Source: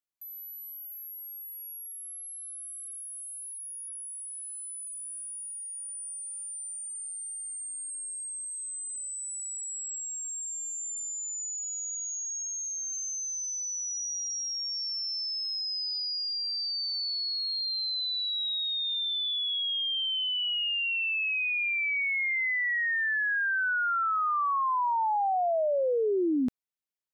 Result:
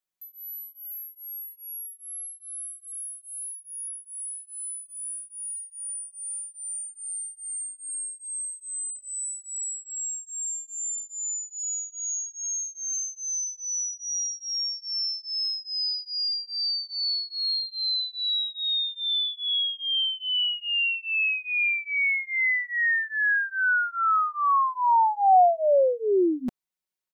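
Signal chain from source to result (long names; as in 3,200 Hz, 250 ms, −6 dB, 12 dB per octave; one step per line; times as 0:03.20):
dynamic equaliser 730 Hz, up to +6 dB, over −46 dBFS, Q 2.3
comb filter 5.4 ms, depth 97%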